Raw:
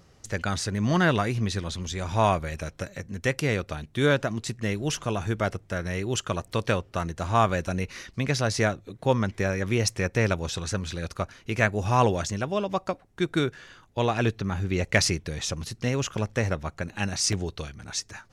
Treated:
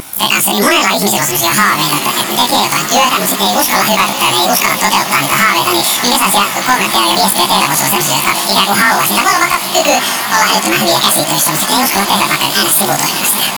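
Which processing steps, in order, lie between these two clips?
short-time spectra conjugated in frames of 75 ms; RIAA curve recording; de-esser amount 95%; peaking EQ 240 Hz -11.5 dB 0.27 oct; compression 10:1, threshold -33 dBFS, peak gain reduction 11 dB; pitch shift +5.5 st; on a send: echo that smears into a reverb 1848 ms, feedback 49%, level -11 dB; on the sum: vibrato 2.9 Hz 49 cents; thinning echo 774 ms, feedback 82%, high-pass 1.1 kHz, level -14 dB; hard clipper -30.5 dBFS, distortion -17 dB; speed mistake 33 rpm record played at 45 rpm; loudness maximiser +31.5 dB; trim -1 dB

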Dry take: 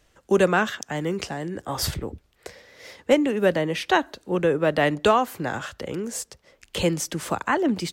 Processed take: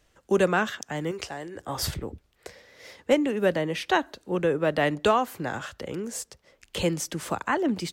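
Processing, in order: 1.11–1.60 s: peaking EQ 190 Hz -12.5 dB 1 oct; trim -3 dB

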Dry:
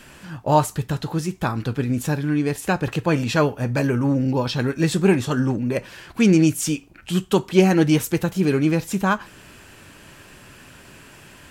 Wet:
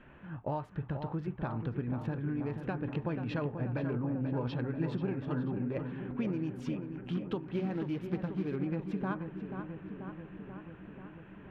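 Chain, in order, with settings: local Wiener filter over 9 samples; compression 16:1, threshold -23 dBFS, peak gain reduction 15 dB; 7.43–8.56 s: short-mantissa float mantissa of 2-bit; distance through air 330 m; filtered feedback delay 486 ms, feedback 72%, low-pass 2.4 kHz, level -7.5 dB; trim -7.5 dB

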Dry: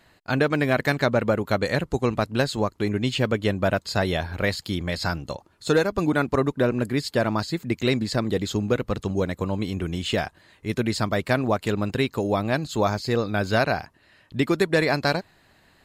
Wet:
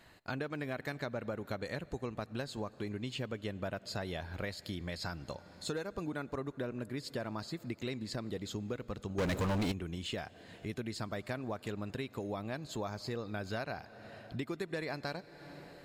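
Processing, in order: on a send at -22 dB: reverberation RT60 3.5 s, pre-delay 66 ms; on the sum: compression 3:1, threshold -38 dBFS, peak gain reduction 17 dB; 9.18–9.72 s: waveshaping leveller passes 5; trim -2.5 dB

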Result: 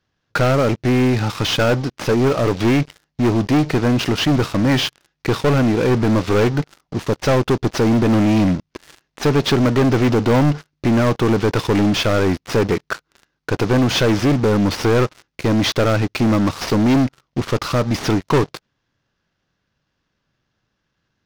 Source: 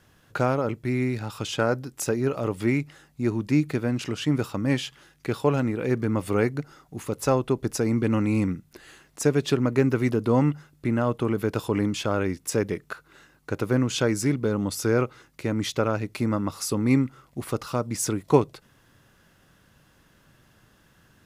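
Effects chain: CVSD coder 32 kbps; waveshaping leveller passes 5; trim -4 dB

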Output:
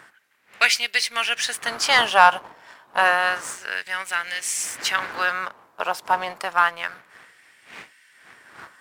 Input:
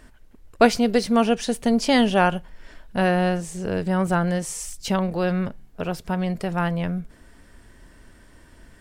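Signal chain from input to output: wind noise 120 Hz -19 dBFS; LFO high-pass sine 0.29 Hz 930–2200 Hz; waveshaping leveller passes 1; trim +2 dB

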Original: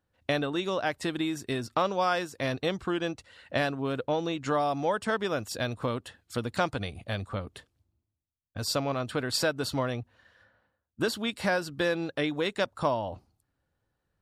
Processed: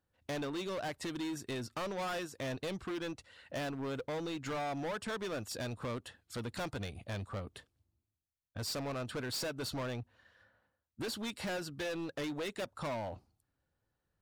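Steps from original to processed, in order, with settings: overload inside the chain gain 30.5 dB; trim -4.5 dB

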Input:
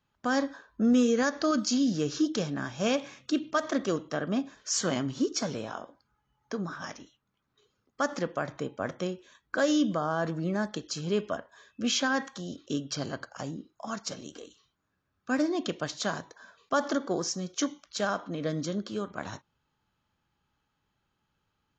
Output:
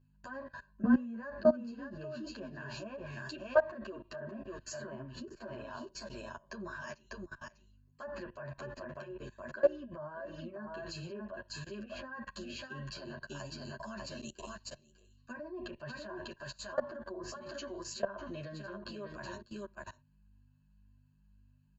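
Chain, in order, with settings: rippled EQ curve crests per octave 1.4, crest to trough 16 dB; delay 597 ms -7 dB; low-pass that closes with the level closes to 1.3 kHz, closed at -22 dBFS; high-pass 54 Hz 12 dB/octave; peaking EQ 230 Hz -5 dB 2.3 oct; hum 50 Hz, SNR 21 dB; level held to a coarse grid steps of 22 dB; endless flanger 9.5 ms -1.9 Hz; trim +3.5 dB

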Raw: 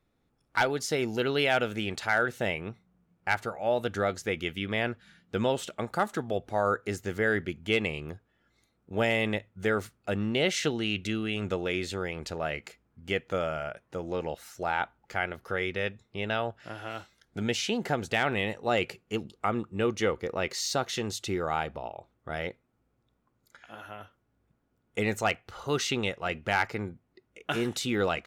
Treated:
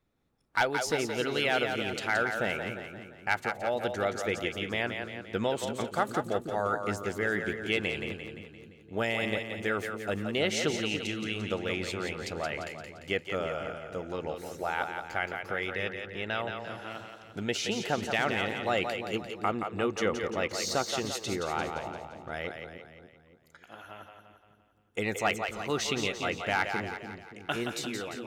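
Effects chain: fade out at the end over 0.64 s; harmonic-percussive split percussive +5 dB; two-band feedback delay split 390 Hz, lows 287 ms, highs 173 ms, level -6 dB; trim -5.5 dB

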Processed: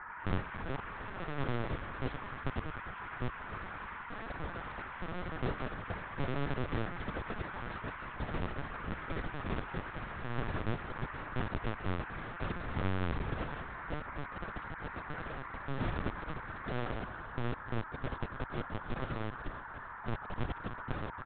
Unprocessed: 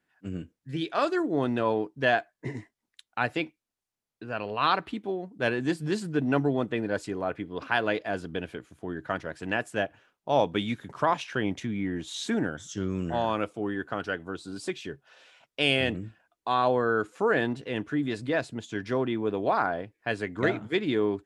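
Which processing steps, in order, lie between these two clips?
de-esser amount 90%; inverse Chebyshev band-stop 490–2900 Hz, stop band 80 dB; hum notches 50/100/150/200/250/300 Hz; compression 4:1, threshold -49 dBFS, peak gain reduction 8.5 dB; word length cut 8-bit, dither none; band noise 810–1700 Hz -61 dBFS; feedback delay 292 ms, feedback 44%, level -12 dB; ever faster or slower copies 100 ms, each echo +4 st, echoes 3, each echo -6 dB; LPC vocoder at 8 kHz pitch kept; trim +14.5 dB

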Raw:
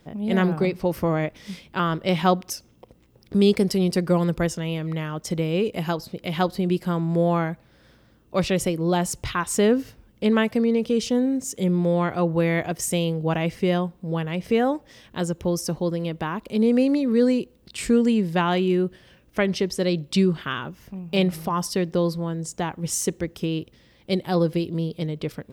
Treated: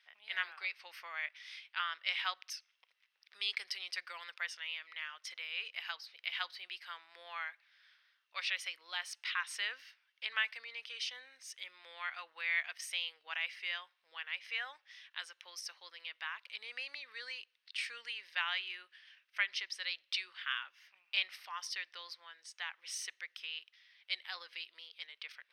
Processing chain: Savitzky-Golay filter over 15 samples; wow and flutter 24 cents; ladder high-pass 1.5 kHz, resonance 30%; trim +1 dB

